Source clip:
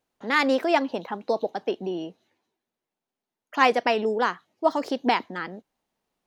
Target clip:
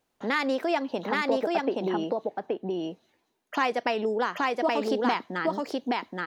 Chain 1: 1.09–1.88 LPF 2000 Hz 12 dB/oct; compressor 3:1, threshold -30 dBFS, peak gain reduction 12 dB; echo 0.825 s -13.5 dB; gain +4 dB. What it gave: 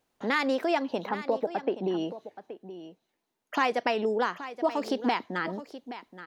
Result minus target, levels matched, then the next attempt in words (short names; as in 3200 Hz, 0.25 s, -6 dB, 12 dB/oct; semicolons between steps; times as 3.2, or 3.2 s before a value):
echo-to-direct -12 dB
1.09–1.88 LPF 2000 Hz 12 dB/oct; compressor 3:1, threshold -30 dBFS, peak gain reduction 12 dB; echo 0.825 s -1.5 dB; gain +4 dB